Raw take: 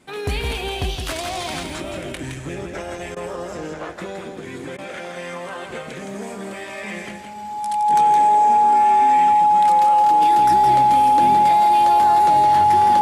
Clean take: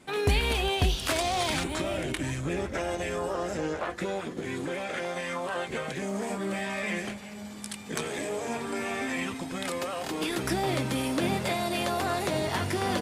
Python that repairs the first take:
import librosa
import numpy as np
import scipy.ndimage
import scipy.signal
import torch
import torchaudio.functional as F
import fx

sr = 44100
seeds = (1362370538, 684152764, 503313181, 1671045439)

y = fx.notch(x, sr, hz=840.0, q=30.0)
y = fx.fix_interpolate(y, sr, at_s=(3.15, 4.77), length_ms=13.0)
y = fx.fix_echo_inverse(y, sr, delay_ms=166, level_db=-5.5)